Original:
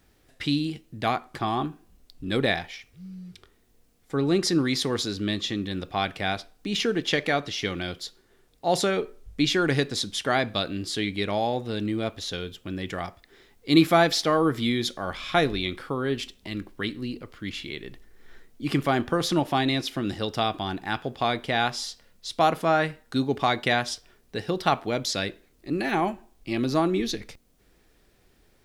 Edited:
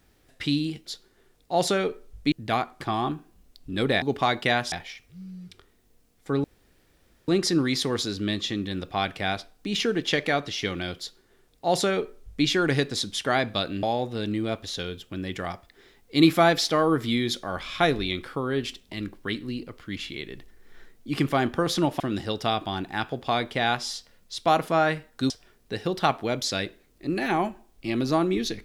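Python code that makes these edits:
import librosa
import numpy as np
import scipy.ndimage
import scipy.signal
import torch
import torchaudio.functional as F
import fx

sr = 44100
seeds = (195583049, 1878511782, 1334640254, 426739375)

y = fx.edit(x, sr, fx.insert_room_tone(at_s=4.28, length_s=0.84),
    fx.duplicate(start_s=7.99, length_s=1.46, to_s=0.86),
    fx.cut(start_s=10.83, length_s=0.54),
    fx.cut(start_s=19.54, length_s=0.39),
    fx.move(start_s=23.23, length_s=0.7, to_s=2.56), tone=tone)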